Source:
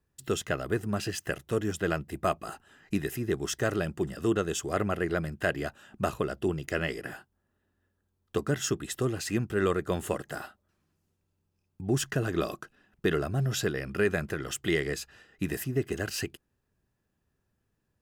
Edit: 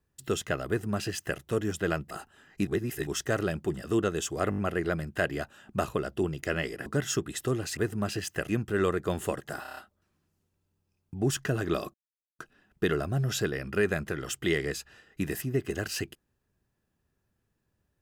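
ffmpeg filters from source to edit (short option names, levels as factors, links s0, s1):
-filter_complex "[0:a]asplit=17[s0][s1][s2][s3][s4][s5][s6][s7][s8][s9][s10][s11][s12][s13][s14][s15][s16];[s0]atrim=end=2.112[s17];[s1]atrim=start=2.438:end=3.002[s18];[s2]atrim=start=2.998:end=3.402,asetpts=PTS-STARTPTS,areverse[s19];[s3]atrim=start=3.398:end=4.852[s20];[s4]atrim=start=4.828:end=4.852[s21];[s5]atrim=start=4.828:end=4.852[s22];[s6]atrim=start=4.828:end=4.852[s23];[s7]atrim=start=4.828:end=7.112[s24];[s8]atrim=start=8.398:end=9.312[s25];[s9]atrim=start=0.678:end=1.402[s26];[s10]atrim=start=9.308:end=10.472[s27];[s11]atrim=start=10.438:end=10.472[s28];[s12]atrim=start=10.438:end=10.472[s29];[s13]atrim=start=10.438:end=10.472[s30];[s14]atrim=start=10.438:end=10.472[s31];[s15]atrim=start=10.438:end=12.61,asetpts=PTS-STARTPTS,afade=t=out:st=2.168:d=0.004:c=hsin,apad=pad_dur=0.45[s32];[s16]atrim=start=12.61,asetpts=PTS-STARTPTS,afade=t=in:d=0.004:c=hsin[s33];[s17][s18]acrossfade=d=0.004:c1=hsin:c2=hsin[s34];[s34][s19]acrossfade=d=0.004:c1=hsin:c2=hsin[s35];[s35][s20]acrossfade=d=0.004:c1=hsin:c2=hsin[s36];[s36][s21]acrossfade=d=0.004:c1=hsin:c2=hsin[s37];[s37][s22]acrossfade=d=0.004:c1=hsin:c2=hsin[s38];[s38][s23]acrossfade=d=0.004:c1=hsin:c2=hsin[s39];[s39][s24]acrossfade=d=0.004:c1=hsin:c2=hsin[s40];[s40][s25]acrossfade=d=0.004:c1=hsin:c2=hsin[s41];[s41][s26]acrossfade=d=0.004:c1=hsin:c2=hsin[s42];[s42][s27]acrossfade=d=0.004:c1=hsin:c2=hsin[s43];[s43][s28]acrossfade=d=0.004:c1=hsin:c2=hsin[s44];[s44][s29]acrossfade=d=0.004:c1=hsin:c2=hsin[s45];[s45][s30]acrossfade=d=0.004:c1=hsin:c2=hsin[s46];[s46][s31]acrossfade=d=0.004:c1=hsin:c2=hsin[s47];[s32][s33]concat=n=2:v=0:a=1[s48];[s47][s48]acrossfade=d=0.004:c1=hsin:c2=hsin"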